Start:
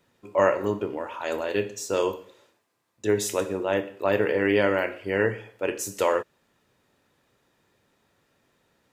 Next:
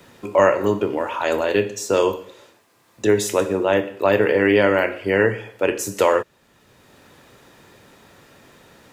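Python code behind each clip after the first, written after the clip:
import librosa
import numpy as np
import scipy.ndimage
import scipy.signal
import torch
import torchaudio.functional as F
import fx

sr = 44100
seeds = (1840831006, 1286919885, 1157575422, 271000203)

y = fx.band_squash(x, sr, depth_pct=40)
y = y * 10.0 ** (6.5 / 20.0)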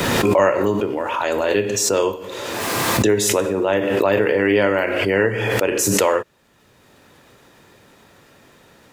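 y = fx.pre_swell(x, sr, db_per_s=22.0)
y = y * 10.0 ** (-1.0 / 20.0)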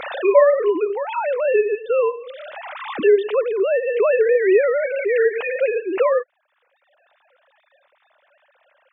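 y = fx.sine_speech(x, sr)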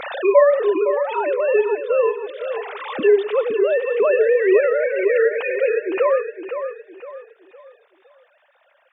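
y = fx.echo_feedback(x, sr, ms=512, feedback_pct=35, wet_db=-9)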